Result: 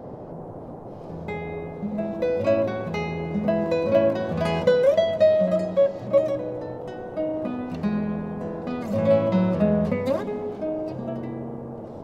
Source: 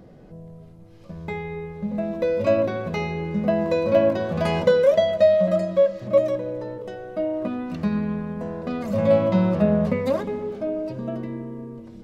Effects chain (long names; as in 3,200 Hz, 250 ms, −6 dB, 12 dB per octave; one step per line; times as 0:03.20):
noise in a band 85–730 Hz −37 dBFS
level −1.5 dB